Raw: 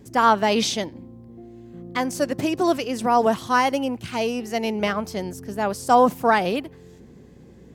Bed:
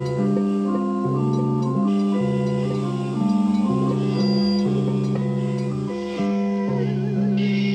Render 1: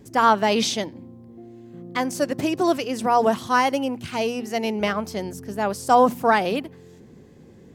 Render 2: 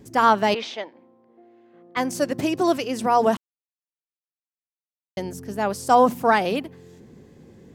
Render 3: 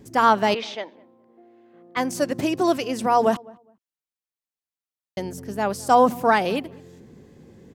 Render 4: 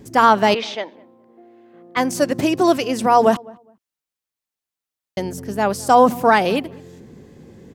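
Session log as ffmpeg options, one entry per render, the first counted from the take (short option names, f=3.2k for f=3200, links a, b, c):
-af "bandreject=f=60:t=h:w=4,bandreject=f=120:t=h:w=4,bandreject=f=180:t=h:w=4,bandreject=f=240:t=h:w=4"
-filter_complex "[0:a]asettb=1/sr,asplit=3[a][b][c];[a]atrim=end=0.544[d];[b]atrim=start=0.54:end=1.97,asetpts=PTS-STARTPTS,afade=t=in:d=0.004:c=qsin,afade=t=out:st=1.426:d=0.004:c=qsin,highpass=570,lowpass=2.4k[e];[c]atrim=start=1.966[f];[d][e]acrossfade=d=0.004:c1=hsin:c2=qsin[g];[g][f]acrossfade=d=0.004:c1=qsin:c2=hsin,asplit=3[h][i][j];[h]atrim=end=3.37,asetpts=PTS-STARTPTS,afade=t=out:st=3.366:d=0.004:c=hsin[k];[i]atrim=start=3.37:end=5.17,asetpts=PTS-STARTPTS,volume=0[l];[j]atrim=start=5.17,asetpts=PTS-STARTPTS,afade=t=in:d=0.004:c=hsin[m];[k][l][m]concat=n=3:v=0:a=1"
-filter_complex "[0:a]asplit=2[a][b];[b]adelay=206,lowpass=f=1.2k:p=1,volume=-23dB,asplit=2[c][d];[d]adelay=206,lowpass=f=1.2k:p=1,volume=0.22[e];[a][c][e]amix=inputs=3:normalize=0"
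-af "volume=5dB,alimiter=limit=-2dB:level=0:latency=1"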